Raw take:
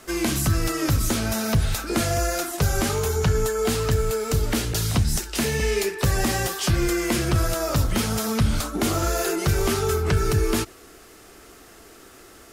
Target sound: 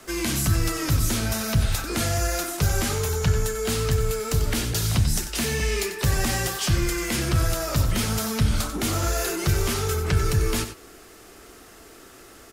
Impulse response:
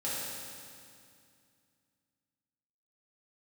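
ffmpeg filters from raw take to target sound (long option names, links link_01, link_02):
-filter_complex "[0:a]acrossover=split=180|1500|5400[link_01][link_02][link_03][link_04];[link_02]asoftclip=type=tanh:threshold=-27.5dB[link_05];[link_01][link_05][link_03][link_04]amix=inputs=4:normalize=0,aecho=1:1:93:0.282"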